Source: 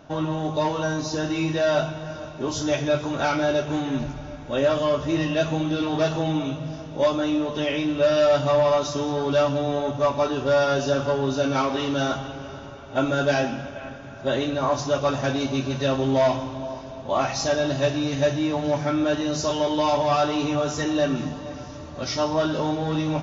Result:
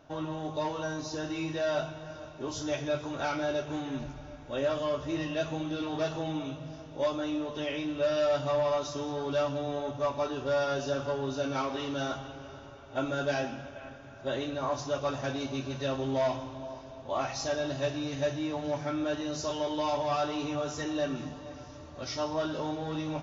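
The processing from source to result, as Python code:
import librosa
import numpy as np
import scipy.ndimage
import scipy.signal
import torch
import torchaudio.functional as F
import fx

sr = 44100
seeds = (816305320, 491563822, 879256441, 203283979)

y = fx.peak_eq(x, sr, hz=190.0, db=-8.0, octaves=0.4)
y = y * librosa.db_to_amplitude(-8.5)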